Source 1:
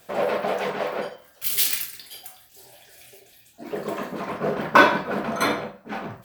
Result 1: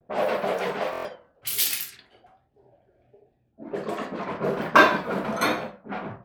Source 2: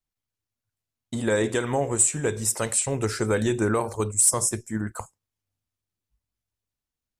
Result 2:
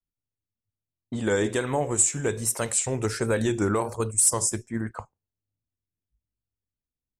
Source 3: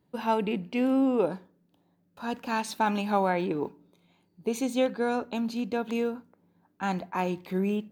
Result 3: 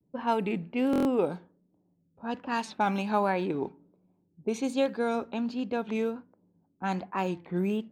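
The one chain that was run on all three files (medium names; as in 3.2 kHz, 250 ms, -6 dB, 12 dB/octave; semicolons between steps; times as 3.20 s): level-controlled noise filter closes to 420 Hz, open at -23.5 dBFS; vibrato 1.3 Hz 90 cents; buffer glitch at 0.91 s, samples 1024, times 5; trim -1 dB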